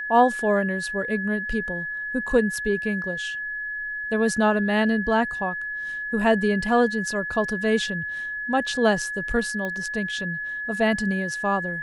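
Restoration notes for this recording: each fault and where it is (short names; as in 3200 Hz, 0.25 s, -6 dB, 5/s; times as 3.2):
tone 1700 Hz -28 dBFS
9.65 pop -18 dBFS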